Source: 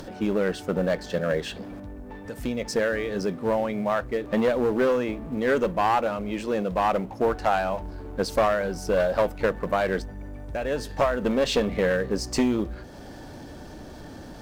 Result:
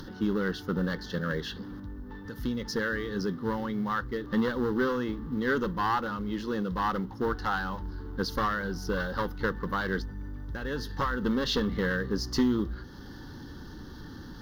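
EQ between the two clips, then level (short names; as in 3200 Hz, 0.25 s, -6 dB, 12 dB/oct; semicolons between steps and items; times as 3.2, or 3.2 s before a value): fixed phaser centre 2400 Hz, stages 6; 0.0 dB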